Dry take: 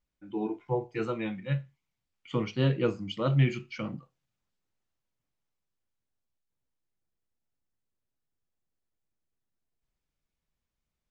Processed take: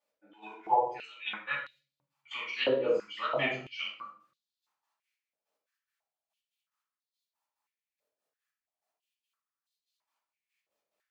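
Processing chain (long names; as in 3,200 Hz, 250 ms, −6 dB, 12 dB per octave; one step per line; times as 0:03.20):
gate pattern "x...x.x." 143 BPM −12 dB
rectangular room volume 550 cubic metres, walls furnished, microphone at 8.5 metres
high-pass on a step sequencer 3 Hz 530–3,900 Hz
level −5 dB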